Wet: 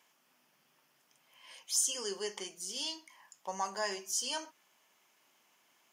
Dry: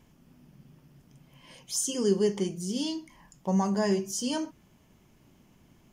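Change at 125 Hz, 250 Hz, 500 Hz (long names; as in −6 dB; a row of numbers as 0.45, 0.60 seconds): below −25 dB, −22.5 dB, −12.5 dB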